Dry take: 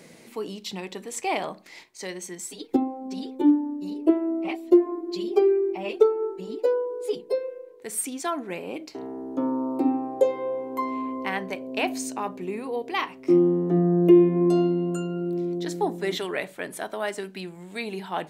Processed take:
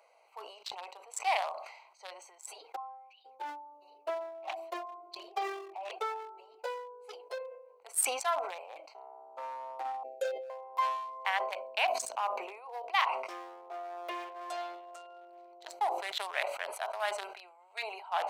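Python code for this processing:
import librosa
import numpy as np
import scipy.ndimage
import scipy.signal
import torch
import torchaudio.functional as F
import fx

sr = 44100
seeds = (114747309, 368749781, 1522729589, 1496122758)

y = fx.bandpass_q(x, sr, hz=fx.line((2.75, 970.0), (3.24, 3700.0)), q=11.0, at=(2.75, 3.24), fade=0.02)
y = fx.cheby2_bandstop(y, sr, low_hz=870.0, high_hz=1800.0, order=4, stop_db=40, at=(10.03, 10.5))
y = fx.wiener(y, sr, points=25)
y = scipy.signal.sosfilt(scipy.signal.butter(6, 690.0, 'highpass', fs=sr, output='sos'), y)
y = fx.sustainer(y, sr, db_per_s=60.0)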